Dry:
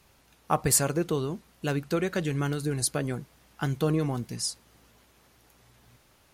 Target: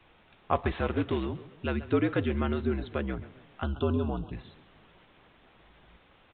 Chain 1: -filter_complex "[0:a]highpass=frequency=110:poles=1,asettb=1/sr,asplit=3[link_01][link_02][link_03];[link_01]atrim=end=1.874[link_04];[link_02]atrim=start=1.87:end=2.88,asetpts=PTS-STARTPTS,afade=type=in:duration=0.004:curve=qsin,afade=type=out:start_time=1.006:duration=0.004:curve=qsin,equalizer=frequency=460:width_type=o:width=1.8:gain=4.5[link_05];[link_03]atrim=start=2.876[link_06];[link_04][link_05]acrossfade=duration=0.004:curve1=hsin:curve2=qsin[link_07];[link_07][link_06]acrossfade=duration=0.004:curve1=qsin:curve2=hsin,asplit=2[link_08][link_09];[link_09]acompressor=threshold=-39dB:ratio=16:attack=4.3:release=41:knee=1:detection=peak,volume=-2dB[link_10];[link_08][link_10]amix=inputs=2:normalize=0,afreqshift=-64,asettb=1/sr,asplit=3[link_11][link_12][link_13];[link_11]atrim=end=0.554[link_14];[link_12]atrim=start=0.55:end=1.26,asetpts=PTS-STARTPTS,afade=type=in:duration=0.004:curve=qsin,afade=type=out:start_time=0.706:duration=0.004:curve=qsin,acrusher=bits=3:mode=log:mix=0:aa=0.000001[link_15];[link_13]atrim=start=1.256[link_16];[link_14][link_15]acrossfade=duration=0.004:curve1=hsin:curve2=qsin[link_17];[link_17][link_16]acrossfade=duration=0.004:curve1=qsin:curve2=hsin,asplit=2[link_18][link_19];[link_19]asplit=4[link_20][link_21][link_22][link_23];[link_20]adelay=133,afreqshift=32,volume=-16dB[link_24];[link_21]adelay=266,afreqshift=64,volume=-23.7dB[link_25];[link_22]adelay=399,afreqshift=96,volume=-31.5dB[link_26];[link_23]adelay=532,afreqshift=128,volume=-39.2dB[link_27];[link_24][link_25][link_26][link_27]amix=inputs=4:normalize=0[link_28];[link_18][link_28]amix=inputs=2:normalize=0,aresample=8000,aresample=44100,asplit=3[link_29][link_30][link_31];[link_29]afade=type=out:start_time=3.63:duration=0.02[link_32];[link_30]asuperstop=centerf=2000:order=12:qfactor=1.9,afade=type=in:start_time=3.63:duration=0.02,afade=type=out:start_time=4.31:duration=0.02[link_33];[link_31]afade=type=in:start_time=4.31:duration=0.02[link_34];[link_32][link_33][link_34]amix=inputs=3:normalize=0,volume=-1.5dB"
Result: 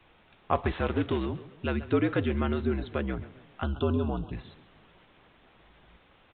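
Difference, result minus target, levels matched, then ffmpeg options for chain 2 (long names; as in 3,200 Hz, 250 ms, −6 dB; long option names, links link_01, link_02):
downward compressor: peak gain reduction −10.5 dB
-filter_complex "[0:a]highpass=frequency=110:poles=1,asettb=1/sr,asplit=3[link_01][link_02][link_03];[link_01]atrim=end=1.874[link_04];[link_02]atrim=start=1.87:end=2.88,asetpts=PTS-STARTPTS,afade=type=in:duration=0.004:curve=qsin,afade=type=out:start_time=1.006:duration=0.004:curve=qsin,equalizer=frequency=460:width_type=o:width=1.8:gain=4.5[link_05];[link_03]atrim=start=2.876[link_06];[link_04][link_05]acrossfade=duration=0.004:curve1=hsin:curve2=qsin[link_07];[link_07][link_06]acrossfade=duration=0.004:curve1=qsin:curve2=hsin,asplit=2[link_08][link_09];[link_09]acompressor=threshold=-50dB:ratio=16:attack=4.3:release=41:knee=1:detection=peak,volume=-2dB[link_10];[link_08][link_10]amix=inputs=2:normalize=0,afreqshift=-64,asettb=1/sr,asplit=3[link_11][link_12][link_13];[link_11]atrim=end=0.554[link_14];[link_12]atrim=start=0.55:end=1.26,asetpts=PTS-STARTPTS,afade=type=in:duration=0.004:curve=qsin,afade=type=out:start_time=0.706:duration=0.004:curve=qsin,acrusher=bits=3:mode=log:mix=0:aa=0.000001[link_15];[link_13]atrim=start=1.256[link_16];[link_14][link_15]acrossfade=duration=0.004:curve1=hsin:curve2=qsin[link_17];[link_17][link_16]acrossfade=duration=0.004:curve1=qsin:curve2=hsin,asplit=2[link_18][link_19];[link_19]asplit=4[link_20][link_21][link_22][link_23];[link_20]adelay=133,afreqshift=32,volume=-16dB[link_24];[link_21]adelay=266,afreqshift=64,volume=-23.7dB[link_25];[link_22]adelay=399,afreqshift=96,volume=-31.5dB[link_26];[link_23]adelay=532,afreqshift=128,volume=-39.2dB[link_27];[link_24][link_25][link_26][link_27]amix=inputs=4:normalize=0[link_28];[link_18][link_28]amix=inputs=2:normalize=0,aresample=8000,aresample=44100,asplit=3[link_29][link_30][link_31];[link_29]afade=type=out:start_time=3.63:duration=0.02[link_32];[link_30]asuperstop=centerf=2000:order=12:qfactor=1.9,afade=type=in:start_time=3.63:duration=0.02,afade=type=out:start_time=4.31:duration=0.02[link_33];[link_31]afade=type=in:start_time=4.31:duration=0.02[link_34];[link_32][link_33][link_34]amix=inputs=3:normalize=0,volume=-1.5dB"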